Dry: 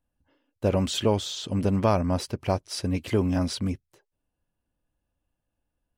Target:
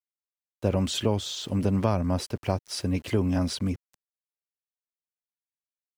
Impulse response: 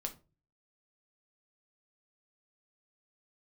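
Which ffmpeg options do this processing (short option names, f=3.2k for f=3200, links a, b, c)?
-filter_complex "[0:a]aeval=exprs='val(0)*gte(abs(val(0)),0.00422)':c=same,acrossover=split=240[a][b];[b]acompressor=threshold=-26dB:ratio=2[c];[a][c]amix=inputs=2:normalize=0"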